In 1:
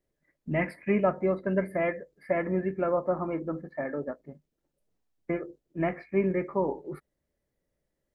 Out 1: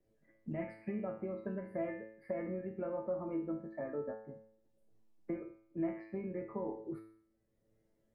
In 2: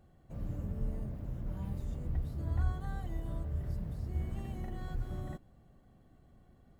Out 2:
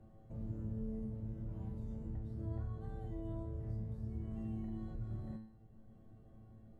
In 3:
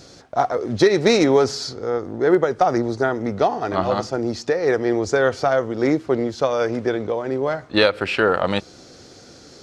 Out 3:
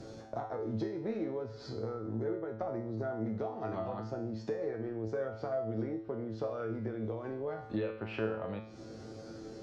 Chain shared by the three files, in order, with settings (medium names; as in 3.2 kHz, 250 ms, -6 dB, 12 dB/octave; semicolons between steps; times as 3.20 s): tilt shelf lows +6 dB, about 880 Hz; low-pass that closes with the level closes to 2.3 kHz, closed at -13 dBFS; compression, threshold -24 dBFS; feedback comb 110 Hz, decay 0.55 s, harmonics all, mix 90%; three bands compressed up and down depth 40%; trim +2 dB